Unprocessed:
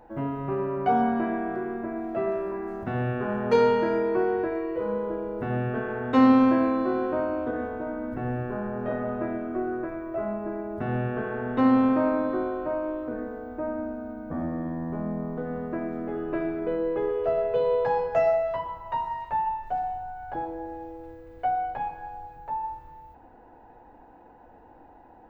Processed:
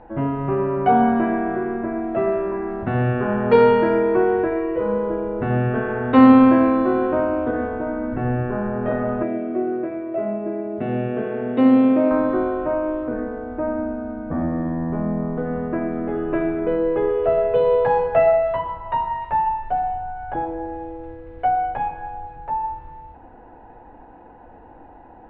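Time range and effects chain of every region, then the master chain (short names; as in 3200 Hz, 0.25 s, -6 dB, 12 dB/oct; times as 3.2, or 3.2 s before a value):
9.23–12.11 HPF 180 Hz + band shelf 1200 Hz -9 dB 1.3 oct
whole clip: LPF 3400 Hz 24 dB/oct; low shelf 130 Hz +3.5 dB; gain +6.5 dB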